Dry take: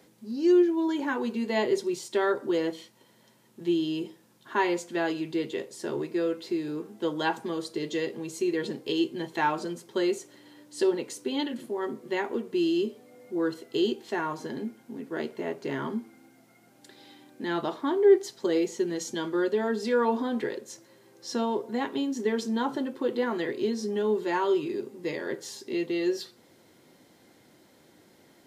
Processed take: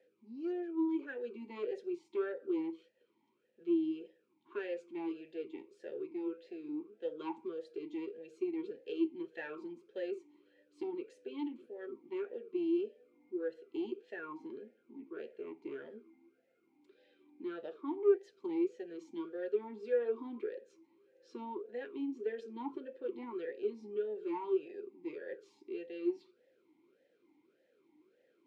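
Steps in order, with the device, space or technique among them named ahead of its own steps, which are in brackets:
talk box (tube saturation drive 17 dB, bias 0.5; formant filter swept between two vowels e-u 1.7 Hz)
level −1 dB

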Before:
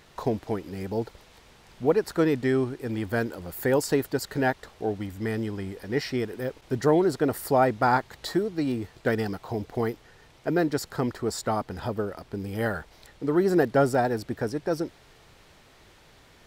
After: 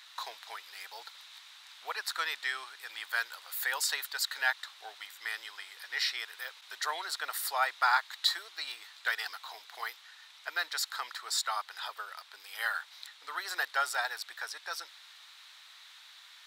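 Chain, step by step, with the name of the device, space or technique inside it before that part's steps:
headphones lying on a table (high-pass filter 1,100 Hz 24 dB per octave; parametric band 3,800 Hz +10 dB 0.41 octaves)
level +1.5 dB

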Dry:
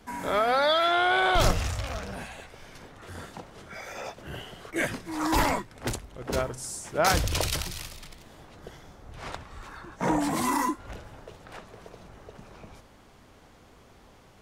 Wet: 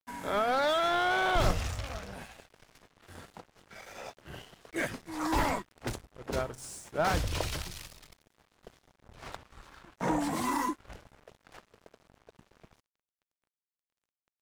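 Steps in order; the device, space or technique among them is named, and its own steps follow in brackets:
early transistor amplifier (dead-zone distortion −45 dBFS; slew-rate limiting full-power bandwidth 120 Hz)
level −3.5 dB

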